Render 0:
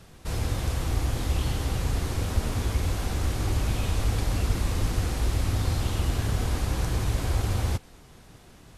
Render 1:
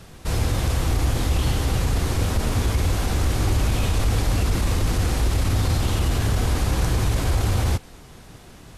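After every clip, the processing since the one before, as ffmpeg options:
-af "alimiter=limit=0.112:level=0:latency=1:release=16,volume=2.11"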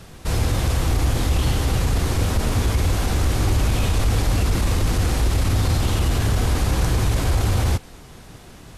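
-af "acontrast=50,volume=0.631"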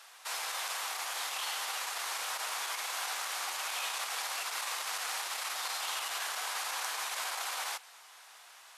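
-af "highpass=f=840:w=0.5412,highpass=f=840:w=1.3066,volume=0.562"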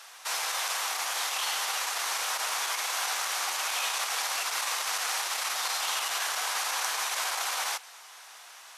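-af "equalizer=f=5900:w=4.9:g=3.5,volume=1.88"

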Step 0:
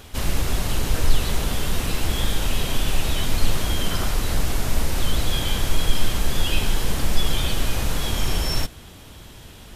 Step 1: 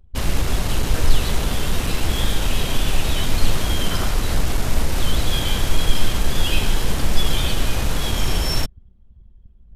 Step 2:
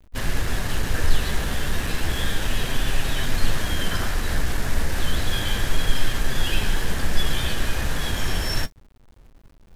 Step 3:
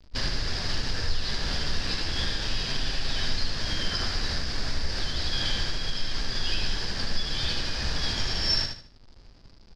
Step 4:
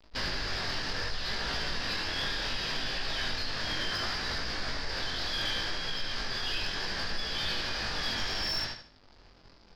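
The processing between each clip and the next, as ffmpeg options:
-af "anlmdn=39.8,volume=1.33"
-af "equalizer=f=1700:t=o:w=0.36:g=9.5,flanger=delay=7.3:depth=6.5:regen=-52:speed=0.33:shape=sinusoidal,acrusher=bits=8:mix=0:aa=0.000001"
-filter_complex "[0:a]acompressor=threshold=0.0562:ratio=2.5,lowpass=f=4900:t=q:w=7.8,asplit=2[s0][s1];[s1]aecho=0:1:76|152|228|304:0.501|0.15|0.0451|0.0135[s2];[s0][s2]amix=inputs=2:normalize=0,volume=0.794"
-filter_complex "[0:a]asoftclip=type=tanh:threshold=0.15,flanger=delay=18:depth=4.9:speed=0.69,asplit=2[s0][s1];[s1]highpass=f=720:p=1,volume=4.47,asoftclip=type=tanh:threshold=0.119[s2];[s0][s2]amix=inputs=2:normalize=0,lowpass=f=2300:p=1,volume=0.501"

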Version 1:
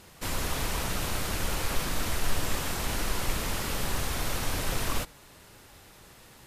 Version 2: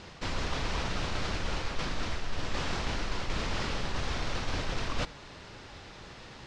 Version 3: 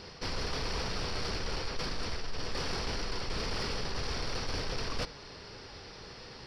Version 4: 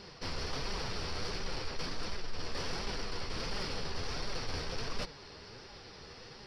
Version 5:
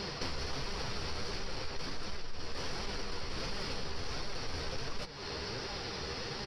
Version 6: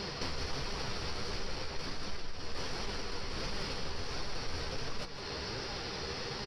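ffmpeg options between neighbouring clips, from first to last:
-af "lowpass=f=5600:w=0.5412,lowpass=f=5600:w=1.3066,areverse,acompressor=threshold=0.02:ratio=6,areverse,volume=2"
-af "superequalizer=7b=1.78:14b=2.51:15b=0.398,asoftclip=type=tanh:threshold=0.0596,volume=0.841"
-af "flanger=delay=4.9:depth=8.1:regen=41:speed=1.4:shape=sinusoidal,volume=1.12"
-filter_complex "[0:a]acompressor=threshold=0.00501:ratio=8,asplit=2[s0][s1];[s1]adelay=15,volume=0.266[s2];[s0][s2]amix=inputs=2:normalize=0,volume=3.76"
-af "aecho=1:1:160:0.316"

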